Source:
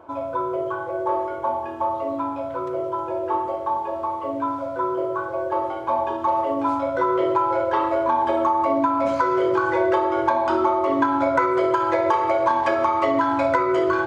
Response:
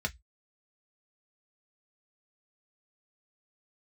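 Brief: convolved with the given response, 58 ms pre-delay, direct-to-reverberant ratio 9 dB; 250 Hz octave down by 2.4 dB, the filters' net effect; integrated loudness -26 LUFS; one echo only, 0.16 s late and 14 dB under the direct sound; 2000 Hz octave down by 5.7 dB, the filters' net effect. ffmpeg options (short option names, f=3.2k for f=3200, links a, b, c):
-filter_complex "[0:a]equalizer=f=250:t=o:g=-3.5,equalizer=f=2k:t=o:g=-8.5,aecho=1:1:160:0.2,asplit=2[a][b];[1:a]atrim=start_sample=2205,adelay=58[c];[b][c]afir=irnorm=-1:irlink=0,volume=-14dB[d];[a][d]amix=inputs=2:normalize=0,volume=-2dB"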